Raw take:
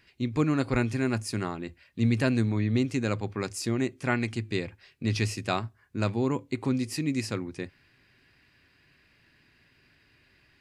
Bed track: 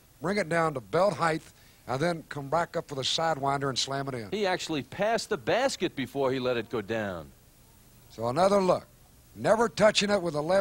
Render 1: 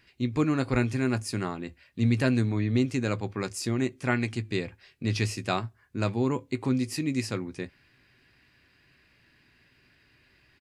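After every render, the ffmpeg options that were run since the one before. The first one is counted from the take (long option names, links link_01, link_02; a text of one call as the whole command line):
ffmpeg -i in.wav -filter_complex "[0:a]asplit=2[link_01][link_02];[link_02]adelay=16,volume=-13dB[link_03];[link_01][link_03]amix=inputs=2:normalize=0" out.wav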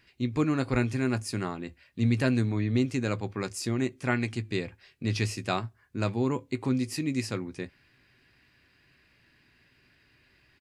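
ffmpeg -i in.wav -af "volume=-1dB" out.wav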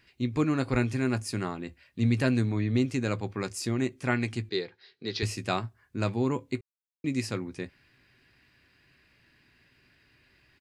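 ffmpeg -i in.wav -filter_complex "[0:a]asettb=1/sr,asplit=3[link_01][link_02][link_03];[link_01]atrim=end=4.494[link_04];[link_02]atrim=start=4.49:end=5.23,asetpts=PTS-STARTPTS,afade=type=in:duration=0.004:curve=qsin,afade=type=out:start_time=0.736:duration=0.004:curve=qsin,highpass=260,equalizer=frequency=260:width_type=q:width=4:gain=-8,equalizer=frequency=420:width_type=q:width=4:gain=7,equalizer=frequency=600:width_type=q:width=4:gain=-9,equalizer=frequency=1100:width_type=q:width=4:gain=-5,equalizer=frequency=2600:width_type=q:width=4:gain=-8,equalizer=frequency=4000:width_type=q:width=4:gain=9,lowpass=frequency=5300:width=0.5412,lowpass=frequency=5300:width=1.3066[link_05];[link_03]atrim=start=5.226[link_06];[link_04][link_05]acrossfade=duration=0.004:curve1=hsin:curve2=qsin[link_07];[link_07][link_06]acrossfade=duration=0.004:curve1=qsin:curve2=hsin,asplit=3[link_08][link_09][link_10];[link_08]atrim=end=6.61,asetpts=PTS-STARTPTS,afade=type=out:start_time=6.606:duration=0.004:curve=hsin[link_11];[link_09]atrim=start=6.61:end=7.04,asetpts=PTS-STARTPTS,volume=0[link_12];[link_10]atrim=start=7.04,asetpts=PTS-STARTPTS,afade=type=in:duration=0.004:curve=hsin[link_13];[link_11][link_12][link_13]concat=n=3:v=0:a=1" out.wav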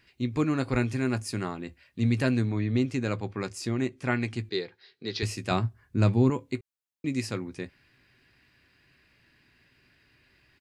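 ffmpeg -i in.wav -filter_complex "[0:a]asettb=1/sr,asplit=3[link_01][link_02][link_03];[link_01]atrim=end=2.354[link_04];[link_02]atrim=start=2.35:end=4.39,asetpts=PTS-STARTPTS,afade=type=in:duration=0.004:curve=qsin,afade=type=out:start_time=2.036:duration=0.004:curve=qsin,highshelf=frequency=8600:gain=-8.5[link_05];[link_03]atrim=start=4.386[link_06];[link_04][link_05]acrossfade=duration=0.004:curve1=hsin:curve2=qsin[link_07];[link_07][link_06]acrossfade=duration=0.004:curve1=qsin:curve2=hsin,asettb=1/sr,asplit=3[link_08][link_09][link_10];[link_08]atrim=end=5.514[link_11];[link_09]atrim=start=5.51:end=6.3,asetpts=PTS-STARTPTS,afade=type=in:duration=0.004:curve=qsin,afade=type=out:start_time=0.786:duration=0.004:curve=qsin,lowshelf=frequency=270:gain=10.5[link_12];[link_10]atrim=start=6.296[link_13];[link_11][link_12]acrossfade=duration=0.004:curve1=hsin:curve2=qsin[link_14];[link_14][link_13]acrossfade=duration=0.004:curve1=qsin:curve2=hsin" out.wav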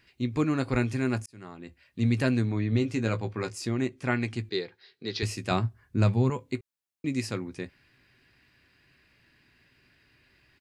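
ffmpeg -i in.wav -filter_complex "[0:a]asettb=1/sr,asplit=3[link_01][link_02][link_03];[link_01]atrim=end=2.704[link_04];[link_02]atrim=start=2.7:end=3.56,asetpts=PTS-STARTPTS,afade=type=in:duration=0.004:curve=qsin,afade=type=out:start_time=0.856:duration=0.004:curve=qsin,asplit=2[link_05][link_06];[link_06]adelay=18,volume=-7dB[link_07];[link_05][link_07]amix=inputs=2:normalize=0,atrim=end_sample=37926[link_08];[link_03]atrim=start=3.556[link_09];[link_04][link_08]acrossfade=duration=0.004:curve1=hsin:curve2=qsin[link_10];[link_10][link_09]acrossfade=duration=0.004:curve1=qsin:curve2=hsin,asettb=1/sr,asplit=3[link_11][link_12][link_13];[link_11]atrim=end=6.034[link_14];[link_12]atrim=start=6.03:end=6.46,asetpts=PTS-STARTPTS,afade=type=in:duration=0.004:curve=qsin,afade=type=out:start_time=0.426:duration=0.004:curve=qsin,equalizer=frequency=300:width_type=o:width=0.45:gain=-10.5[link_15];[link_13]atrim=start=6.456[link_16];[link_14][link_15]acrossfade=duration=0.004:curve1=hsin:curve2=qsin[link_17];[link_17][link_16]acrossfade=duration=0.004:curve1=qsin:curve2=hsin,asplit=2[link_18][link_19];[link_18]atrim=end=1.26,asetpts=PTS-STARTPTS,afade=type=out:start_time=1.256:duration=0.004:curve=hsin[link_20];[link_19]atrim=start=1.26,asetpts=PTS-STARTPTS,afade=type=in:duration=0.74[link_21];[link_20][link_21]concat=n=2:v=0:a=1" out.wav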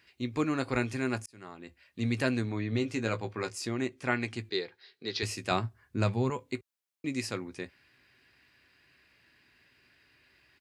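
ffmpeg -i in.wav -af "highpass=63,equalizer=frequency=140:width=0.59:gain=-7" out.wav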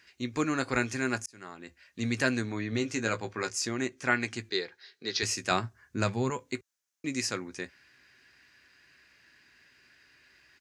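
ffmpeg -i in.wav -af "equalizer=frequency=100:width_type=o:width=0.67:gain=-4,equalizer=frequency=1600:width_type=o:width=0.67:gain=6,equalizer=frequency=6300:width_type=o:width=0.67:gain=11" out.wav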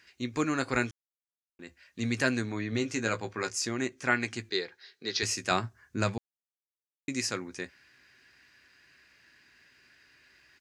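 ffmpeg -i in.wav -filter_complex "[0:a]asplit=5[link_01][link_02][link_03][link_04][link_05];[link_01]atrim=end=0.91,asetpts=PTS-STARTPTS,afade=type=out:start_time=0.906:duration=0.004:curve=hsin[link_06];[link_02]atrim=start=0.91:end=1.59,asetpts=PTS-STARTPTS,volume=0[link_07];[link_03]atrim=start=1.59:end=6.18,asetpts=PTS-STARTPTS,afade=type=in:duration=0.004:curve=hsin,afade=type=out:start_time=4.586:duration=0.004:curve=hsin[link_08];[link_04]atrim=start=6.18:end=7.08,asetpts=PTS-STARTPTS,volume=0[link_09];[link_05]atrim=start=7.08,asetpts=PTS-STARTPTS,afade=type=in:duration=0.004:curve=hsin[link_10];[link_06][link_07][link_08][link_09][link_10]concat=n=5:v=0:a=1" out.wav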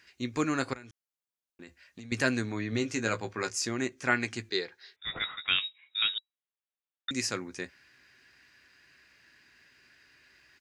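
ffmpeg -i in.wav -filter_complex "[0:a]asettb=1/sr,asplit=3[link_01][link_02][link_03];[link_01]atrim=end=0.734[link_04];[link_02]atrim=start=0.73:end=2.12,asetpts=PTS-STARTPTS,afade=type=in:duration=0.004:curve=qsin,afade=type=out:start_time=1.386:duration=0.004:curve=qsin,acompressor=threshold=-41dB:ratio=16:attack=3.2:release=140:knee=1:detection=peak[link_05];[link_03]atrim=start=2.116[link_06];[link_04][link_05]acrossfade=duration=0.004:curve1=hsin:curve2=qsin[link_07];[link_07][link_06]acrossfade=duration=0.004:curve1=qsin:curve2=hsin,asettb=1/sr,asplit=3[link_08][link_09][link_10];[link_08]atrim=end=4.964[link_11];[link_09]atrim=start=4.96:end=7.11,asetpts=PTS-STARTPTS,afade=type=in:duration=0.004:curve=qsin,afade=type=out:start_time=2.146:duration=0.004:curve=qsin,lowpass=frequency=3300:width_type=q:width=0.5098,lowpass=frequency=3300:width_type=q:width=0.6013,lowpass=frequency=3300:width_type=q:width=0.9,lowpass=frequency=3300:width_type=q:width=2.563,afreqshift=-3900[link_12];[link_10]atrim=start=7.106[link_13];[link_11][link_12]acrossfade=duration=0.004:curve1=hsin:curve2=qsin[link_14];[link_14][link_13]acrossfade=duration=0.004:curve1=qsin:curve2=hsin" out.wav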